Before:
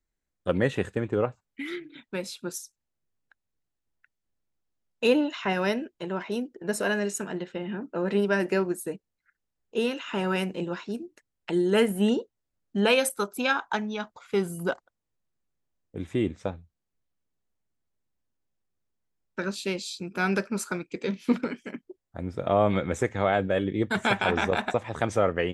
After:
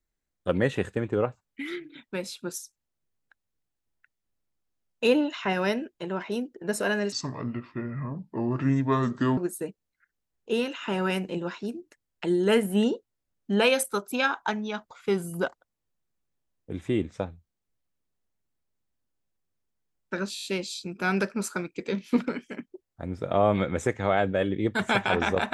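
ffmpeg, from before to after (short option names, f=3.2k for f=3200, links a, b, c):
-filter_complex "[0:a]asplit=8[a][b][c][d][e][f][g][h];[a]atrim=end=7.124[i];[b]atrim=start=7.12:end=8.63,asetpts=PTS-STARTPTS,asetrate=29547,aresample=44100[j];[c]atrim=start=8.626:end=19.622[k];[d]atrim=start=19.598:end=19.622[l];[e]atrim=start=19.598:end=19.622[m];[f]atrim=start=19.598:end=19.622[n];[g]atrim=start=19.598:end=19.622[o];[h]atrim=start=19.598[p];[i][j]acrossfade=d=0.004:c1=hsin:c2=hsin[q];[q][k]acrossfade=d=0.004:c1=hsin:c2=hsin[r];[r][l]acrossfade=d=0.004:c1=hsin:c2=hsin[s];[s][m]acrossfade=d=0.004:c1=hsin:c2=hsin[t];[t][n]acrossfade=d=0.004:c1=hsin:c2=hsin[u];[u][o]acrossfade=d=0.004:c1=hsin:c2=hsin[v];[v][p]acrossfade=d=0.004:c1=hsin:c2=hsin"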